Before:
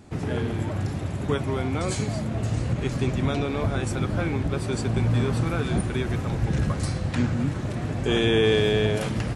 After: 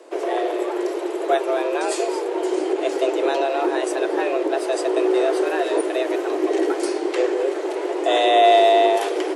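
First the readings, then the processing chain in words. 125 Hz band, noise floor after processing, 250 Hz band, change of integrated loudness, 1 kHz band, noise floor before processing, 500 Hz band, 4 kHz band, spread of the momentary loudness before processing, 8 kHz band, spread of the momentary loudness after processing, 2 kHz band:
under -40 dB, -27 dBFS, +2.0 dB, +5.0 dB, +14.0 dB, -31 dBFS, +9.5 dB, +3.5 dB, 7 LU, +3.0 dB, 9 LU, +3.5 dB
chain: small resonant body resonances 420/2900 Hz, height 6 dB; frequency shift +260 Hz; gain +3 dB

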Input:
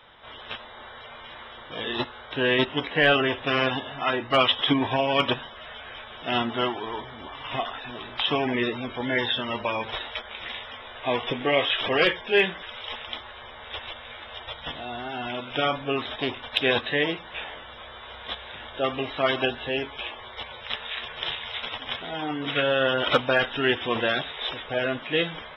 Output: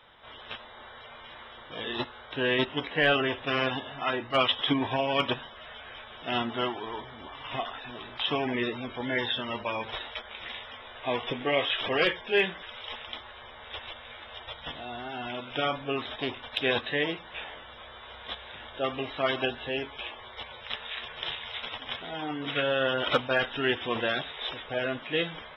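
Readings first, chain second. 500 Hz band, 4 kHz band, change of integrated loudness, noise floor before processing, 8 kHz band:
-4.0 dB, -4.0 dB, -4.0 dB, -43 dBFS, n/a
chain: attack slew limiter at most 380 dB/s; gain -4 dB

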